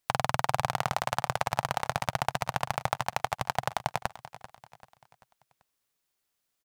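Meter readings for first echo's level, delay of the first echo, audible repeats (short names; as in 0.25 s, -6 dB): -16.0 dB, 0.389 s, 3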